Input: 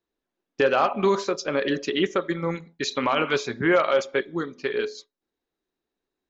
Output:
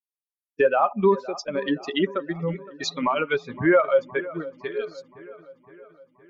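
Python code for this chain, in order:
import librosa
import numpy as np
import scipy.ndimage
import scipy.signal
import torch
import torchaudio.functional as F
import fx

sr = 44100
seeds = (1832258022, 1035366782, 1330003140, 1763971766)

p1 = fx.bin_expand(x, sr, power=2.0)
p2 = p1 + fx.echo_wet_lowpass(p1, sr, ms=515, feedback_pct=57, hz=1500.0, wet_db=-17.0, dry=0)
p3 = fx.env_lowpass_down(p2, sr, base_hz=2000.0, full_db=-24.0)
y = p3 * librosa.db_to_amplitude(4.5)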